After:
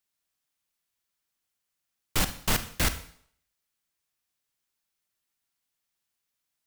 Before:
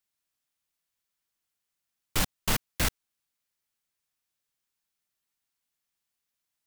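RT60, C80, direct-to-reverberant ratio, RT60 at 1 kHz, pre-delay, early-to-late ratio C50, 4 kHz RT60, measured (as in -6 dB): 0.60 s, 16.0 dB, 10.0 dB, 0.60 s, 37 ms, 12.5 dB, 0.60 s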